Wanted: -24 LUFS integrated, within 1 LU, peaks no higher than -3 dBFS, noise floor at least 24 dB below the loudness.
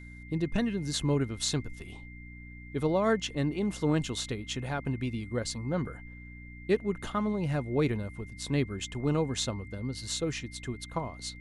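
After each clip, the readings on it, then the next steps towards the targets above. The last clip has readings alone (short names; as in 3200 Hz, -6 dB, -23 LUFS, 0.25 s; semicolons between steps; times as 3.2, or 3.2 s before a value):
hum 60 Hz; harmonics up to 300 Hz; hum level -43 dBFS; steady tone 2100 Hz; tone level -50 dBFS; loudness -31.5 LUFS; peak -15.0 dBFS; loudness target -24.0 LUFS
-> de-hum 60 Hz, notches 5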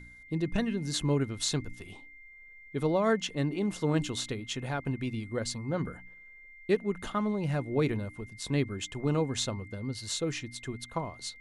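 hum none; steady tone 2100 Hz; tone level -50 dBFS
-> notch 2100 Hz, Q 30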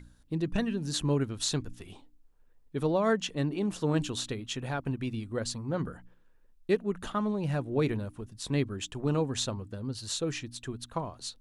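steady tone none; loudness -32.0 LUFS; peak -14.5 dBFS; loudness target -24.0 LUFS
-> gain +8 dB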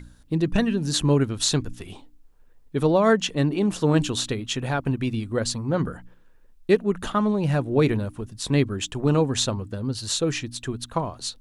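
loudness -24.0 LUFS; peak -6.5 dBFS; noise floor -53 dBFS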